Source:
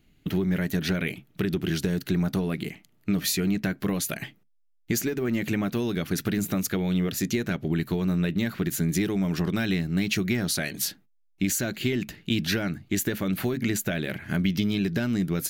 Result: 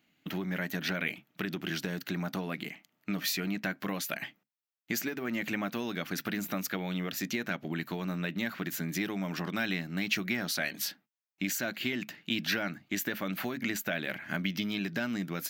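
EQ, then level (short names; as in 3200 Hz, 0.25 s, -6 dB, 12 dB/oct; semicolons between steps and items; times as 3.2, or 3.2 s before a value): HPF 300 Hz 12 dB/oct; dynamic EQ 6800 Hz, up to -5 dB, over -50 dBFS, Q 4.3; fifteen-band EQ 400 Hz -10 dB, 4000 Hz -3 dB, 10000 Hz -12 dB; 0.0 dB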